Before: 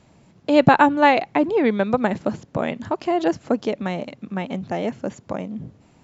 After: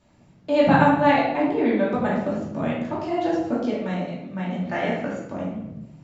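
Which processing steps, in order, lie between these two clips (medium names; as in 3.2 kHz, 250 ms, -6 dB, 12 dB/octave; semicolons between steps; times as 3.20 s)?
4.67–5.07 s: peaking EQ 1.7 kHz +12.5 dB 1.8 oct; simulated room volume 320 m³, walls mixed, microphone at 2.6 m; trim -11 dB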